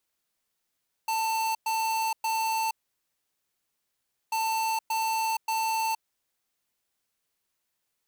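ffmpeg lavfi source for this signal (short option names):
-f lavfi -i "aevalsrc='0.0422*(2*lt(mod(891*t,1),0.5)-1)*clip(min(mod(mod(t,3.24),0.58),0.47-mod(mod(t,3.24),0.58))/0.005,0,1)*lt(mod(t,3.24),1.74)':d=6.48:s=44100"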